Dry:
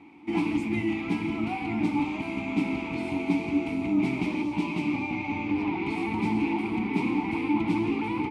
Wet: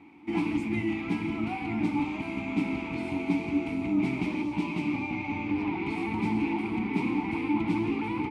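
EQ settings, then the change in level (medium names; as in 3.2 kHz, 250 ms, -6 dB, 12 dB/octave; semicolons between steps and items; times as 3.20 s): bass shelf 210 Hz +3.5 dB; peaking EQ 1.6 kHz +3.5 dB 0.77 oct; -3.0 dB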